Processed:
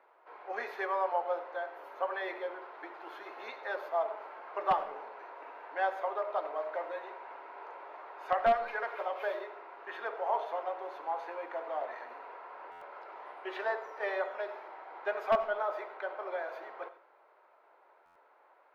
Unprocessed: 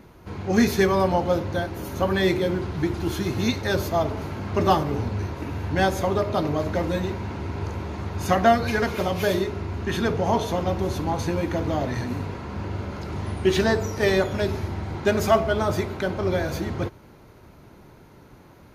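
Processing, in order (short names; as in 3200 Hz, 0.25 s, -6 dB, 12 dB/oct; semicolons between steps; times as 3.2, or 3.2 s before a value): Bessel high-pass 940 Hz, order 6; bell 4100 Hz -14 dB 2.7 oct; in parallel at -4.5 dB: wrapped overs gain 17.5 dB; on the sum: air absorption 380 m; on a send at -13.5 dB: reverb RT60 0.40 s, pre-delay 45 ms; on the sum: stuck buffer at 12.71/18.05, samples 512, times 8; gain -2 dB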